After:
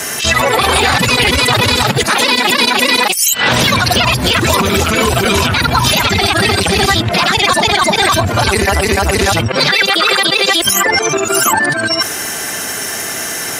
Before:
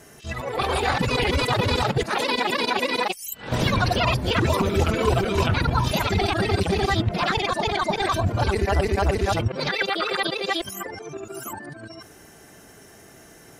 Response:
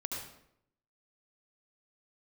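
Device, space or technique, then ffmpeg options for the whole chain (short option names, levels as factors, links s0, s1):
mastering chain: -filter_complex "[0:a]highpass=56,equalizer=f=240:t=o:w=0.29:g=4,acrossover=split=290|7600[s0][s1][s2];[s0]acompressor=threshold=0.0631:ratio=4[s3];[s1]acompressor=threshold=0.0251:ratio=4[s4];[s2]acompressor=threshold=0.00398:ratio=4[s5];[s3][s4][s5]amix=inputs=3:normalize=0,acompressor=threshold=0.0355:ratio=2.5,asoftclip=type=tanh:threshold=0.0708,tiltshelf=f=670:g=-8,alimiter=level_in=16.8:limit=0.891:release=50:level=0:latency=1,volume=0.891"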